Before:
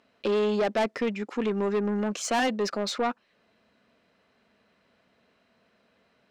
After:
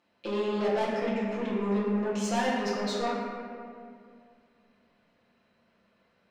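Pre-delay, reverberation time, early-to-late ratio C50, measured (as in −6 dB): 6 ms, 2.2 s, −0.5 dB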